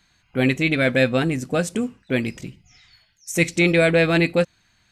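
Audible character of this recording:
background noise floor −63 dBFS
spectral slope −5.0 dB per octave

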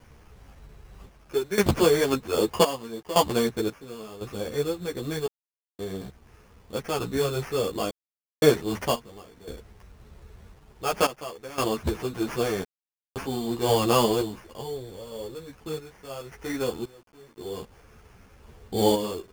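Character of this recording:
aliases and images of a low sample rate 3,900 Hz, jitter 0%
sample-and-hold tremolo 1.9 Hz, depth 100%
a quantiser's noise floor 10 bits, dither none
a shimmering, thickened sound

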